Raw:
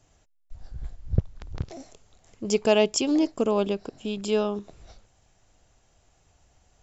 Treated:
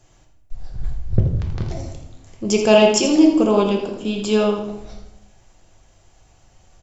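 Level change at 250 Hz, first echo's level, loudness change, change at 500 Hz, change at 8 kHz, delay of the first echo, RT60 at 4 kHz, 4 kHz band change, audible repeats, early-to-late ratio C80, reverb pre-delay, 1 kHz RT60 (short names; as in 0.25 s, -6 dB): +9.5 dB, -9.5 dB, +8.5 dB, +7.5 dB, n/a, 82 ms, 0.60 s, +7.5 dB, 1, 6.5 dB, 3 ms, 0.80 s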